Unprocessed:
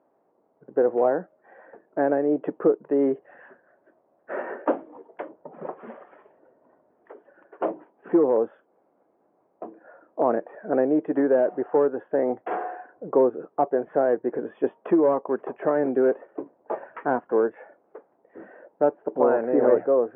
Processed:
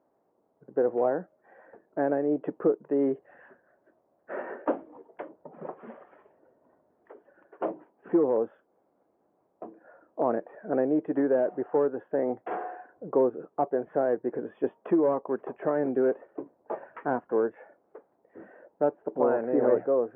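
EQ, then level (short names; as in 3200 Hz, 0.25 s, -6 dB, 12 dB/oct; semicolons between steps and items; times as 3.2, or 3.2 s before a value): low shelf 110 Hz +11.5 dB; -5.0 dB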